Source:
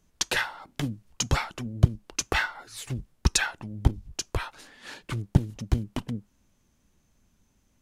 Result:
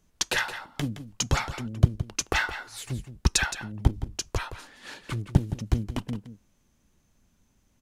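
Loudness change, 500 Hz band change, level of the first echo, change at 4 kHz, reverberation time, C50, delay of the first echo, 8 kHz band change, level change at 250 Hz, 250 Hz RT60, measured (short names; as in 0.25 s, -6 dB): 0.0 dB, +0.5 dB, -12.0 dB, +0.5 dB, none, none, 0.168 s, +0.5 dB, +0.5 dB, none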